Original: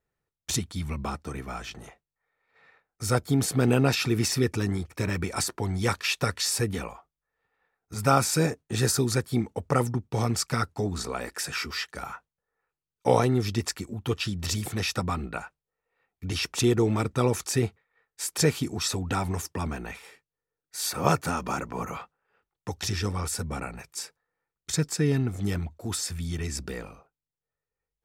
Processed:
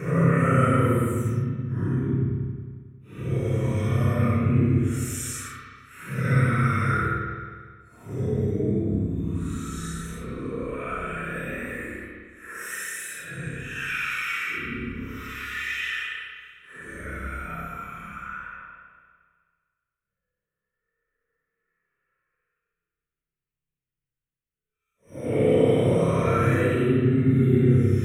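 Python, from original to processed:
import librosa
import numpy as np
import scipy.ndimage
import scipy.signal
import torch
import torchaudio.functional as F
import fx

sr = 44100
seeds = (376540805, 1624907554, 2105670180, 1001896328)

y = fx.paulstretch(x, sr, seeds[0], factor=7.5, window_s=0.05, from_s=9.7)
y = fx.fixed_phaser(y, sr, hz=2000.0, stages=4)
y = fx.rev_spring(y, sr, rt60_s=1.7, pass_ms=(30, 54), chirp_ms=45, drr_db=-5.0)
y = y * librosa.db_to_amplitude(-1.5)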